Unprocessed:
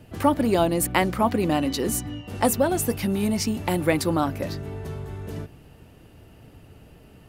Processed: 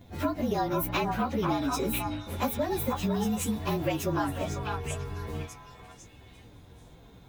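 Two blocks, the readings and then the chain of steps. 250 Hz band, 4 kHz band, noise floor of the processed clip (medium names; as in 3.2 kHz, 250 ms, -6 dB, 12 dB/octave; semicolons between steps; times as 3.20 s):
-6.5 dB, -6.0 dB, -53 dBFS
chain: frequency axis rescaled in octaves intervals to 111%; compression, threshold -25 dBFS, peak gain reduction 9 dB; repeats whose band climbs or falls 497 ms, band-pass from 1.1 kHz, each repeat 1.4 oct, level 0 dB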